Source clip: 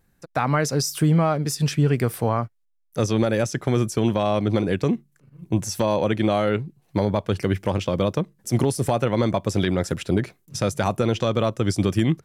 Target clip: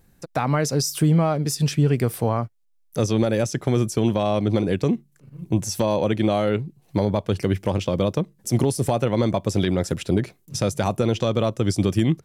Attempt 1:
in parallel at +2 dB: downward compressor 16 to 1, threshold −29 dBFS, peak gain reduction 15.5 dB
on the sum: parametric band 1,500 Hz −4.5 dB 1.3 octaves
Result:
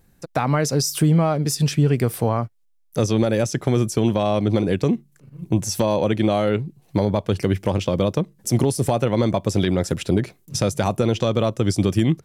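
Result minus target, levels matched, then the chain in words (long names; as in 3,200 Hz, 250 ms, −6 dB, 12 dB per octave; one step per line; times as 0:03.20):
downward compressor: peak gain reduction −10 dB
in parallel at +2 dB: downward compressor 16 to 1, threshold −39.5 dBFS, peak gain reduction 25.5 dB
on the sum: parametric band 1,500 Hz −4.5 dB 1.3 octaves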